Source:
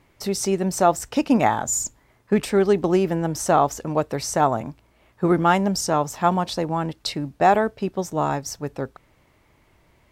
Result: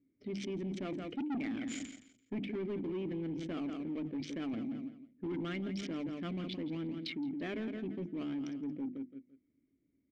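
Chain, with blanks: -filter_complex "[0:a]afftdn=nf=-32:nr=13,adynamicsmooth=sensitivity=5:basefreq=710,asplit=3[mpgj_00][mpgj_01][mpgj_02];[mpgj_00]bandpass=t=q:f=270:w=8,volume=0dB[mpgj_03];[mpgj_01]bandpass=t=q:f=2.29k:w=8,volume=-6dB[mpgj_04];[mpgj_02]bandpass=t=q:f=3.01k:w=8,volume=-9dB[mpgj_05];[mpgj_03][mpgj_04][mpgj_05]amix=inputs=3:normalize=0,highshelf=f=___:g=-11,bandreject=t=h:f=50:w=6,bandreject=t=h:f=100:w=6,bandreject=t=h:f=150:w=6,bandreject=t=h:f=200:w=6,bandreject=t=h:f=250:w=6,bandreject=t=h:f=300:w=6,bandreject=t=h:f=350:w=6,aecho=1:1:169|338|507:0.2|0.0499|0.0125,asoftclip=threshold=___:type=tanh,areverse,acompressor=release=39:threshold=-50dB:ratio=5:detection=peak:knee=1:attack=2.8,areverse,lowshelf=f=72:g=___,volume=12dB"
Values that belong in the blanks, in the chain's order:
9.4k, -29dB, 4.5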